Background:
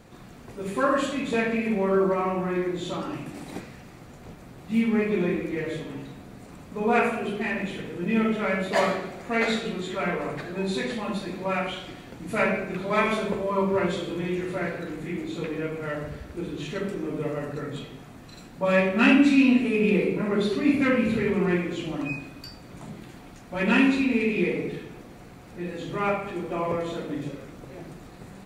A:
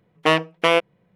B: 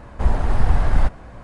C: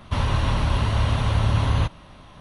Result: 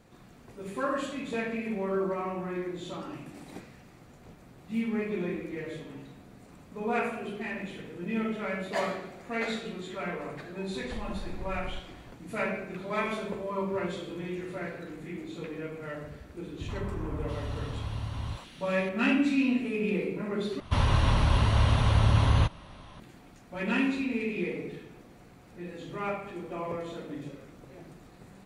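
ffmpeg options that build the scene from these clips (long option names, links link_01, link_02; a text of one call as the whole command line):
ffmpeg -i bed.wav -i cue0.wav -i cue1.wav -i cue2.wav -filter_complex "[3:a]asplit=2[link_01][link_02];[0:a]volume=-7.5dB[link_03];[2:a]acompressor=threshold=-22dB:ratio=6:attack=3.2:release=140:knee=1:detection=peak[link_04];[link_01]acrossover=split=480|1800[link_05][link_06][link_07];[link_06]adelay=80[link_08];[link_07]adelay=680[link_09];[link_05][link_08][link_09]amix=inputs=3:normalize=0[link_10];[link_03]asplit=2[link_11][link_12];[link_11]atrim=end=20.604[link_13];[link_02]atrim=end=2.4,asetpts=PTS-STARTPTS,volume=-2dB[link_14];[link_12]atrim=start=22.996[link_15];[link_04]atrim=end=1.43,asetpts=PTS-STARTPTS,volume=-12dB,afade=type=in:duration=0.004:curve=hsin,afade=type=out:start_time=1.426:duration=0.004:curve=hsin,adelay=10720[link_16];[link_10]atrim=end=2.4,asetpts=PTS-STARTPTS,volume=-14.5dB,afade=type=in:duration=0.004:curve=hsin,afade=type=out:start_time=2.396:duration=0.004:curve=hsin,adelay=16490[link_17];[link_13][link_14]acrossfade=duration=0.004:curve1=hsin:curve2=hsin[link_18];[link_18][link_15]acrossfade=duration=0.004:curve1=hsin:curve2=hsin[link_19];[link_19][link_16][link_17]amix=inputs=3:normalize=0" out.wav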